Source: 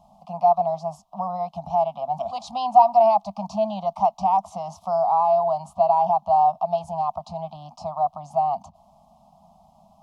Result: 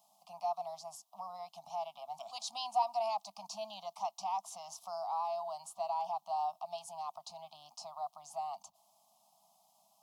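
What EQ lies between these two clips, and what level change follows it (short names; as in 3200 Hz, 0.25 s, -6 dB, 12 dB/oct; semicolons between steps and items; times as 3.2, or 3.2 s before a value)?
dynamic EQ 400 Hz, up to -6 dB, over -36 dBFS, Q 1.1; differentiator; +3.5 dB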